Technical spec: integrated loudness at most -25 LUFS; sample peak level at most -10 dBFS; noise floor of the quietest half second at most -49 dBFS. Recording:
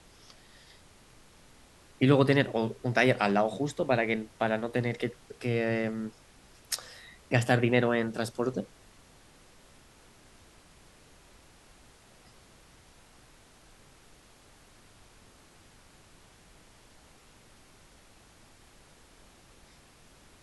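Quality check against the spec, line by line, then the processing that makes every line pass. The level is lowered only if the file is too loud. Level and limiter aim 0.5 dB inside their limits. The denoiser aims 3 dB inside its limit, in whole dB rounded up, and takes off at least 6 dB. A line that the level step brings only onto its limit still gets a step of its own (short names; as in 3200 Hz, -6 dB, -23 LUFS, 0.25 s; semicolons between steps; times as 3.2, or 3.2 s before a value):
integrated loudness -28.5 LUFS: OK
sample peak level -8.5 dBFS: fail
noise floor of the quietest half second -57 dBFS: OK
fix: limiter -10.5 dBFS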